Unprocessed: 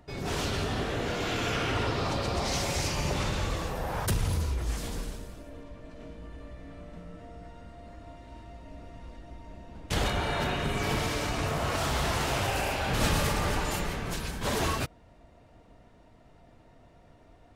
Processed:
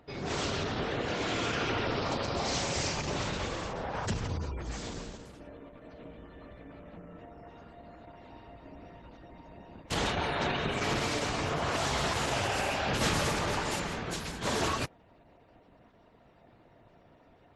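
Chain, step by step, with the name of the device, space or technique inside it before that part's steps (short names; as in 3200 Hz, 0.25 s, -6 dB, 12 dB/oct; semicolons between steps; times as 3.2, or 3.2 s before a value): 6.88–8.04 HPF 46 Hz 12 dB/oct; noise-suppressed video call (HPF 130 Hz 6 dB/oct; spectral gate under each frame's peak -30 dB strong; Opus 12 kbps 48000 Hz)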